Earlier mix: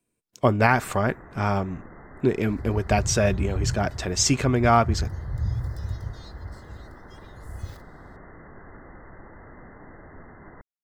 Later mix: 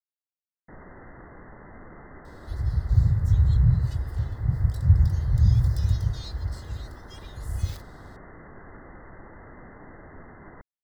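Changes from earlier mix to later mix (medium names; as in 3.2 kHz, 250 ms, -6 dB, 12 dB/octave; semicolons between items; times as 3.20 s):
speech: muted; second sound +8.0 dB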